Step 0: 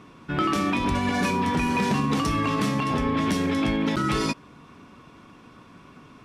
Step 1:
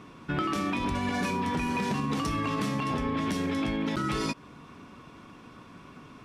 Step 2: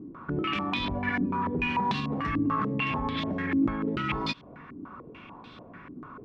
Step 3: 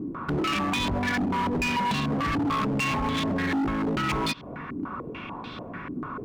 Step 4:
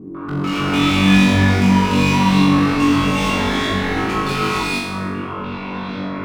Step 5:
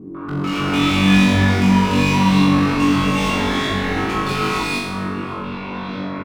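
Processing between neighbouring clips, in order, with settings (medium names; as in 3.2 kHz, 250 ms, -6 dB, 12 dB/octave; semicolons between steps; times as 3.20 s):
compression, threshold -26 dBFS, peak gain reduction 7 dB
dynamic bell 510 Hz, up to -6 dB, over -45 dBFS, Q 0.73; step-sequenced low-pass 6.8 Hz 310–3800 Hz
in parallel at +2 dB: compression, threshold -34 dBFS, peak gain reduction 13 dB; on the sum: hard clipper -26 dBFS, distortion -9 dB; trim +2.5 dB
flutter echo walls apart 3.6 m, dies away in 1 s; gated-style reverb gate 480 ms rising, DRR -7 dB; trim -3 dB
echo from a far wall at 96 m, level -14 dB; trim -1 dB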